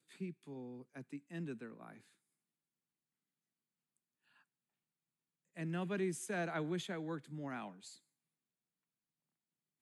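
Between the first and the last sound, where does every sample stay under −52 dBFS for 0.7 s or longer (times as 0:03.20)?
0:01.97–0:05.57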